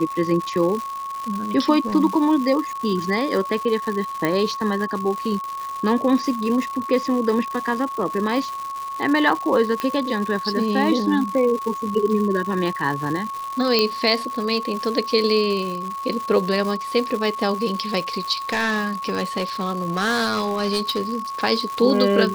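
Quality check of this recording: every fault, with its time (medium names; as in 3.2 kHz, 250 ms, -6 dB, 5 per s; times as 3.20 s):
crackle 290 per s -27 dBFS
whine 1.1 kHz -27 dBFS
4.25 s: pop -8 dBFS
9.80 s: pop -10 dBFS
13.79 s: pop -5 dBFS
18.32–21.16 s: clipped -17.5 dBFS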